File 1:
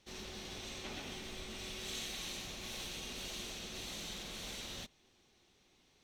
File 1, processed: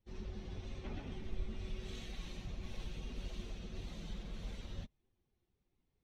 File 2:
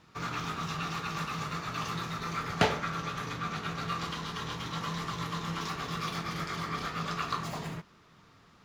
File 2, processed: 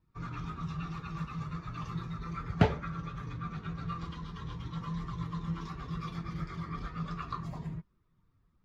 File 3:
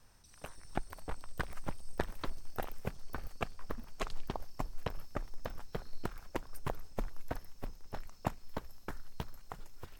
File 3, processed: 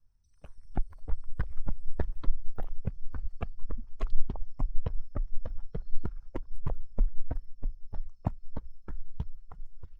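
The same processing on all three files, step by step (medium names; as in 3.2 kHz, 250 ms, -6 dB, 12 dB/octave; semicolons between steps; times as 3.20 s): expander on every frequency bin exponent 1.5; RIAA curve playback; trim -3 dB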